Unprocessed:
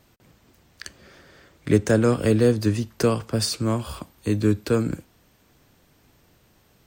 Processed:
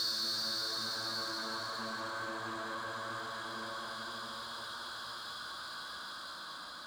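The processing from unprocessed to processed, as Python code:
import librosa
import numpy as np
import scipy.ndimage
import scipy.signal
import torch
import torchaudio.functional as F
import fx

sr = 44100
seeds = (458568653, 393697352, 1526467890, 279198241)

y = fx.paulstretch(x, sr, seeds[0], factor=14.0, window_s=0.5, from_s=3.56)
y = fx.double_bandpass(y, sr, hz=2500.0, octaves=1.3)
y = fx.power_curve(y, sr, exponent=0.7)
y = y * librosa.db_to_amplitude(1.5)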